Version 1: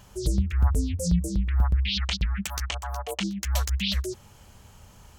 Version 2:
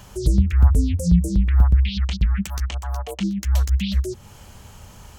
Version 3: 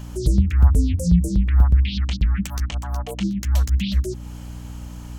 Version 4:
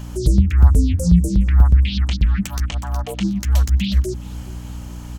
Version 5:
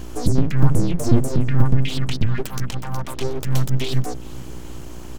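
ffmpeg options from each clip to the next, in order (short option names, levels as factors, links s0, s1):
-filter_complex "[0:a]acrossover=split=340[s0][s1];[s1]acompressor=threshold=0.00708:ratio=3[s2];[s0][s2]amix=inputs=2:normalize=0,volume=2.37"
-af "aeval=exprs='val(0)+0.0224*(sin(2*PI*60*n/s)+sin(2*PI*2*60*n/s)/2+sin(2*PI*3*60*n/s)/3+sin(2*PI*4*60*n/s)/4+sin(2*PI*5*60*n/s)/5)':c=same"
-af "aecho=1:1:414|828|1242|1656:0.0631|0.0353|0.0198|0.0111,volume=1.41"
-af "aeval=exprs='abs(val(0))':c=same"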